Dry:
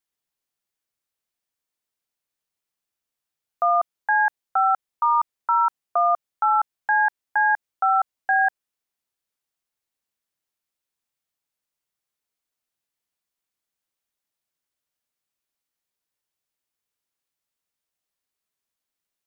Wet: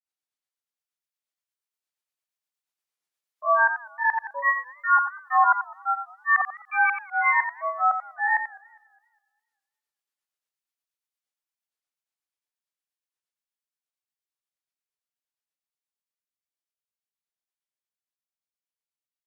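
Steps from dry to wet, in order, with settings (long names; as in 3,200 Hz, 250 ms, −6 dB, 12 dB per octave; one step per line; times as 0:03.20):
source passing by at 0:05.33, 15 m/s, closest 22 metres
high-pass filter 720 Hz 6 dB per octave
dynamic equaliser 1,200 Hz, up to +3 dB, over −32 dBFS, Q 4
in parallel at +1.5 dB: speech leveller
on the sum: volume swells 101 ms
granular cloud 218 ms, grains 8.5 per second, pitch spread up and down by 7 semitones
on a send: single-tap delay 88 ms −9 dB
on the sum: feedback echo with a swinging delay time 205 ms, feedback 39%, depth 164 cents, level −23.5 dB
level −2.5 dB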